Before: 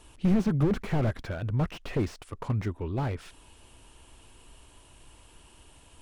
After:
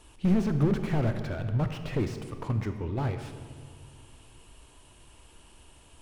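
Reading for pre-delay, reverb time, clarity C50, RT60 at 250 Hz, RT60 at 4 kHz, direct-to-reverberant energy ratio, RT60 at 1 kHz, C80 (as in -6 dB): 22 ms, 2.0 s, 8.5 dB, 2.4 s, 1.3 s, 7.5 dB, 1.9 s, 9.5 dB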